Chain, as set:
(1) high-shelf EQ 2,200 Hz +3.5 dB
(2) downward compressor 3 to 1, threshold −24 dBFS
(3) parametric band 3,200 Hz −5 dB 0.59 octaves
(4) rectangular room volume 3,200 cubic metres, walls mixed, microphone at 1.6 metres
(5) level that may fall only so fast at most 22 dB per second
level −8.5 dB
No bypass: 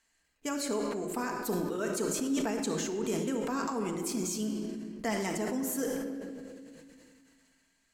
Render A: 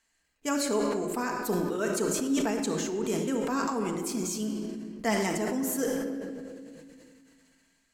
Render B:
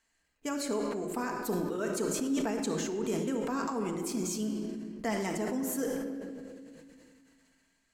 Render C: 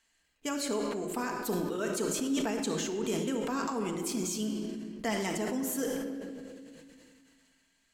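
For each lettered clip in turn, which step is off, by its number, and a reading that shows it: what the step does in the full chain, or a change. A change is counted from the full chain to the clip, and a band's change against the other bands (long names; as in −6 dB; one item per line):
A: 2, change in crest factor +1.5 dB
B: 1, 8 kHz band −2.0 dB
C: 3, 4 kHz band +2.5 dB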